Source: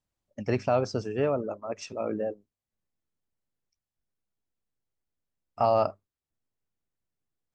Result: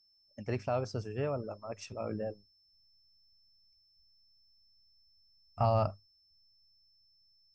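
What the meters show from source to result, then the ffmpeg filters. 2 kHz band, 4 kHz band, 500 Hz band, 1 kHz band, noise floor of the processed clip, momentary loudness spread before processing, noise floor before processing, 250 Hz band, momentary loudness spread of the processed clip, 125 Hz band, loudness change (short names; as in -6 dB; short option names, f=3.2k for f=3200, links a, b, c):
-7.0 dB, -5.0 dB, -7.5 dB, -6.5 dB, -69 dBFS, 12 LU, under -85 dBFS, -7.0 dB, 13 LU, +1.0 dB, -6.0 dB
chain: -af "dynaudnorm=f=340:g=11:m=3.5dB,aeval=exprs='val(0)+0.00112*sin(2*PI*5300*n/s)':c=same,asubboost=boost=9:cutoff=120,volume=-7.5dB"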